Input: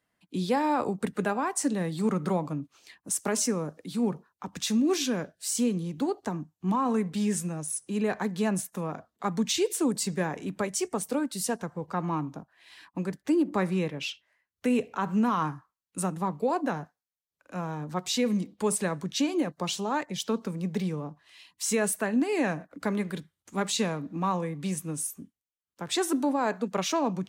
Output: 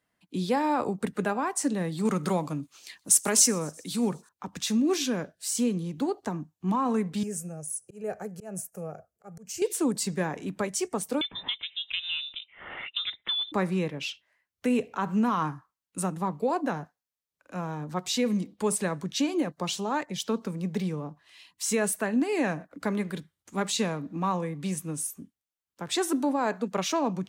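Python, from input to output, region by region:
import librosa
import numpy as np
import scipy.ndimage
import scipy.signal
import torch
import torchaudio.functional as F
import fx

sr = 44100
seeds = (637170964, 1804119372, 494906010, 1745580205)

y = fx.chain(x, sr, fx.high_shelf(hz=2400.0, db=10.0),
    fx.echo_wet_highpass(ms=125, feedback_pct=67, hz=4500.0, wet_db=-24), at=(2.05, 4.29))
y = fx.chain(y, sr, fx.peak_eq(hz=1900.0, db=-14.0, octaves=0.9),
    fx.auto_swell(attack_ms=179.0),
    fx.fixed_phaser(hz=1000.0, stages=6), at=(7.23, 9.62))
y = fx.chain(y, sr, fx.low_shelf(hz=210.0, db=-11.5),
    fx.freq_invert(carrier_hz=3800),
    fx.band_squash(depth_pct=100), at=(11.21, 13.52))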